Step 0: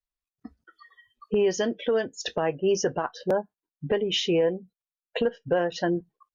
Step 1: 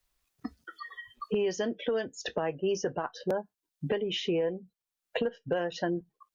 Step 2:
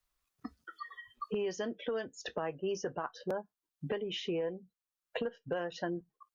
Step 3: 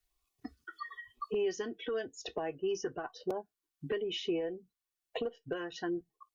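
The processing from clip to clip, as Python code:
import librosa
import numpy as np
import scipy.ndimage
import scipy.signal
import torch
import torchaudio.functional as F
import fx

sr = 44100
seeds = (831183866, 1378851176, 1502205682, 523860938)

y1 = fx.band_squash(x, sr, depth_pct=70)
y1 = y1 * librosa.db_to_amplitude(-5.5)
y2 = fx.peak_eq(y1, sr, hz=1200.0, db=5.5, octaves=0.56)
y2 = y2 * librosa.db_to_amplitude(-6.0)
y3 = y2 + 0.51 * np.pad(y2, (int(2.7 * sr / 1000.0), 0))[:len(y2)]
y3 = fx.filter_lfo_notch(y3, sr, shape='sine', hz=1.0, low_hz=550.0, high_hz=1700.0, q=1.9)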